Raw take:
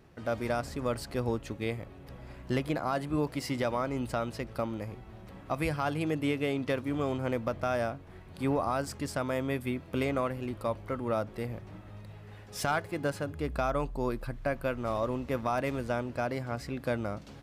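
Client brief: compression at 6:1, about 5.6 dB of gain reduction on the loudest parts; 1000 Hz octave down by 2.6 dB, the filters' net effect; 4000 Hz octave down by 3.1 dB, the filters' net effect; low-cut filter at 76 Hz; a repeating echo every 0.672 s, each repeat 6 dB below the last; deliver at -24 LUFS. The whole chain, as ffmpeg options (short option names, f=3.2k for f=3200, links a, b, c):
-af "highpass=76,equalizer=f=1k:t=o:g=-3.5,equalizer=f=4k:t=o:g=-4,acompressor=threshold=-32dB:ratio=6,aecho=1:1:672|1344|2016|2688|3360|4032:0.501|0.251|0.125|0.0626|0.0313|0.0157,volume=13.5dB"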